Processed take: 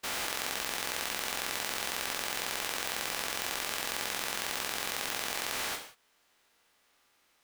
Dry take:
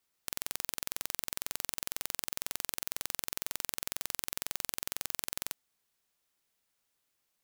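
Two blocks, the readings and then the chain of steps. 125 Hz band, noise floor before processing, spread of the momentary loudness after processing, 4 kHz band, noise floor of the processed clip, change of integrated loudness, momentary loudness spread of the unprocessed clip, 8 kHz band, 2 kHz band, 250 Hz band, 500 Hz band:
+3.0 dB, -80 dBFS, 0 LU, +7.0 dB, -70 dBFS, +3.5 dB, 1 LU, +2.5 dB, +10.5 dB, +6.5 dB, +10.0 dB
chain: spectral dilation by 0.48 s; LPF 2400 Hz 6 dB/oct; low shelf 290 Hz -10.5 dB; in parallel at +1.5 dB: compressor, threshold -56 dBFS, peak gain reduction 19.5 dB; on the sum: non-linear reverb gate 0.21 s falling, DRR 3 dB; gain +3.5 dB

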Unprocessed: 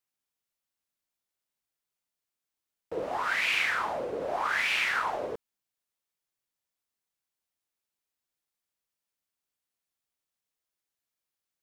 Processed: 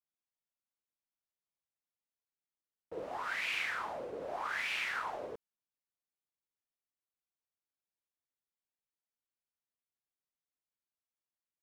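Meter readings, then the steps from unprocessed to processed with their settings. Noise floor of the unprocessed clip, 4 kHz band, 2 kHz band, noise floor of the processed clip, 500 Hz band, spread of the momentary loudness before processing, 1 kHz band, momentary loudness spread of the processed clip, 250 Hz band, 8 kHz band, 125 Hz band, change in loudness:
under -85 dBFS, -8.5 dB, -8.5 dB, under -85 dBFS, -8.5 dB, 12 LU, -8.5 dB, 12 LU, -8.5 dB, -8.5 dB, -8.5 dB, -8.5 dB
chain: mismatched tape noise reduction decoder only; gain -8.5 dB

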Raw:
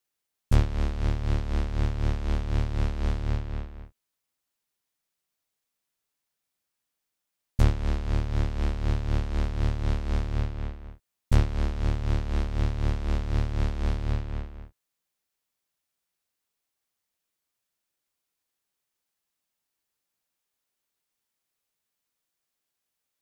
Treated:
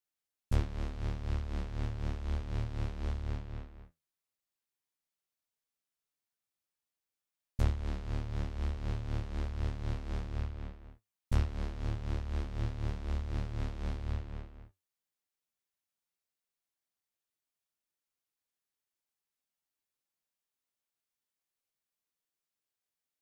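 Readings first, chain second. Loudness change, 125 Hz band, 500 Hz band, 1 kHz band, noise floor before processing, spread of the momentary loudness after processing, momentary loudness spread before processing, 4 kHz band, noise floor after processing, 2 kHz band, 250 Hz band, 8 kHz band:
-8.5 dB, -8.5 dB, -9.0 dB, -8.5 dB, -84 dBFS, 8 LU, 11 LU, -9.0 dB, under -85 dBFS, -9.0 dB, -9.0 dB, n/a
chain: flange 1.1 Hz, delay 7.6 ms, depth 6.6 ms, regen +67%; gain -4.5 dB

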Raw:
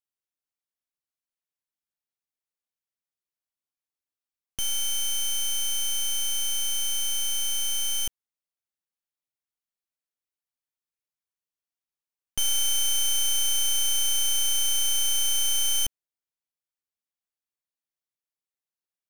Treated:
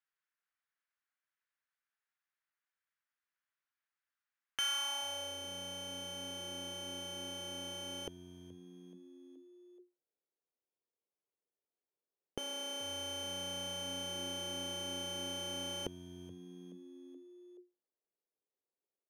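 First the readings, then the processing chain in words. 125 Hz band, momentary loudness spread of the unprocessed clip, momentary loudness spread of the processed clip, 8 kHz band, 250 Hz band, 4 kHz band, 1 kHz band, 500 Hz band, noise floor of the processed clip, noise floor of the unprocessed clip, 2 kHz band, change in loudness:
n/a, 5 LU, 19 LU, -20.0 dB, +7.0 dB, -12.5 dB, -0.5 dB, +7.0 dB, under -85 dBFS, under -85 dBFS, -7.0 dB, -15.5 dB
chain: frequency-shifting echo 0.426 s, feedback 51%, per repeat +89 Hz, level -21.5 dB; band-pass sweep 1600 Hz -> 430 Hz, 4.58–5.38; gain +11 dB

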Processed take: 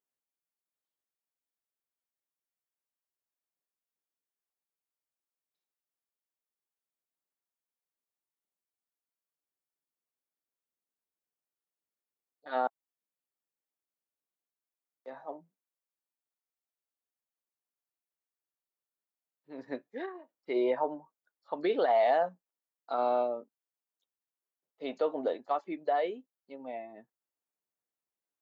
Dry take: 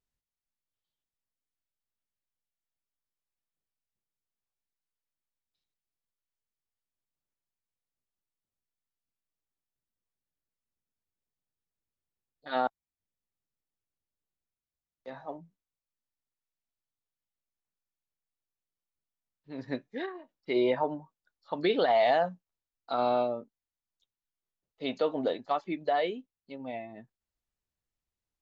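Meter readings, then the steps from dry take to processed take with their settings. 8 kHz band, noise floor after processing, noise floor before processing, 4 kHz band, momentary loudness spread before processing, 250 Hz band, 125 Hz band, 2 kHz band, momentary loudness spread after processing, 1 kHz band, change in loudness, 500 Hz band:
n/a, under -85 dBFS, under -85 dBFS, -9.0 dB, 19 LU, -4.0 dB, under -10 dB, -4.5 dB, 20 LU, -1.0 dB, -1.5 dB, -1.5 dB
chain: HPF 330 Hz 12 dB/oct; bell 3900 Hz -9.5 dB 2 oct

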